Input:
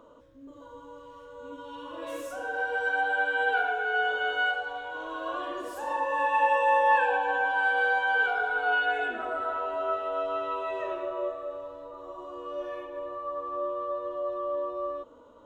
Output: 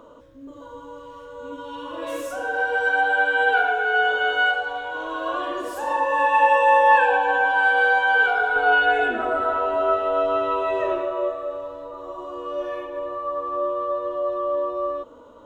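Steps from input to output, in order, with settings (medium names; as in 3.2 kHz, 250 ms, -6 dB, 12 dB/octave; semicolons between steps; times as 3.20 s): 8.56–11.02 s: bass shelf 480 Hz +6.5 dB; trim +7 dB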